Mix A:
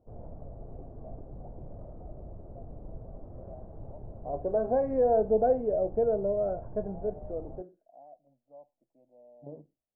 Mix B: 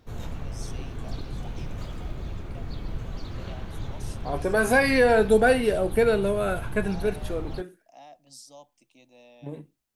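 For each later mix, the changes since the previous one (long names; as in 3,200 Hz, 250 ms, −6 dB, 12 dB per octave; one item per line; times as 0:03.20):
master: remove transistor ladder low-pass 720 Hz, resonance 60%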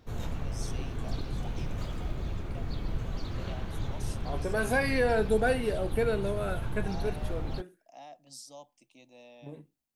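second voice −7.5 dB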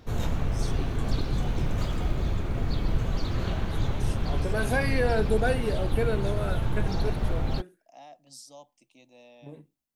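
background +7.0 dB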